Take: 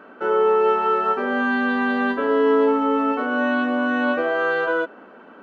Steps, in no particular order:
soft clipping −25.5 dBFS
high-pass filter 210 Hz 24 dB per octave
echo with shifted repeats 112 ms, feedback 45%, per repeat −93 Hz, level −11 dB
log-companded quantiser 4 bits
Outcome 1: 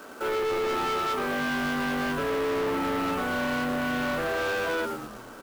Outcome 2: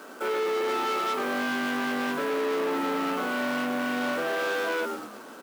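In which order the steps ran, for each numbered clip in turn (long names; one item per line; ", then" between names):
high-pass filter, then echo with shifted repeats, then log-companded quantiser, then soft clipping
echo with shifted repeats, then log-companded quantiser, then soft clipping, then high-pass filter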